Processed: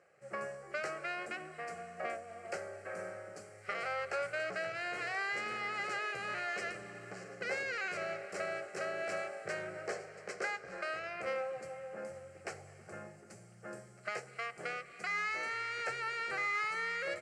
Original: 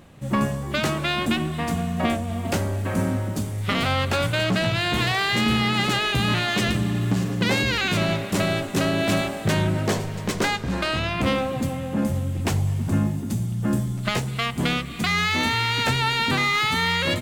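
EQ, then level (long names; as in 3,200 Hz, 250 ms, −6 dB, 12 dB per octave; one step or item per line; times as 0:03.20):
loudspeaker in its box 450–7,200 Hz, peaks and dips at 660 Hz −3 dB, 1,800 Hz −3 dB, 2,800 Hz −5 dB, 6,400 Hz −7 dB
phaser with its sweep stopped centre 970 Hz, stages 6
−8.0 dB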